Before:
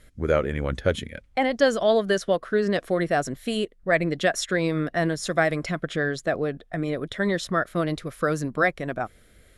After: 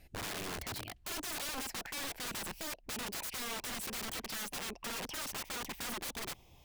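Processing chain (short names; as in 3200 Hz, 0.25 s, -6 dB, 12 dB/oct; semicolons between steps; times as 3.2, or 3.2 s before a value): speed glide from 126% -> 162%; limiter -17.5 dBFS, peak gain reduction 10.5 dB; wrapped overs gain 29 dB; gain -6 dB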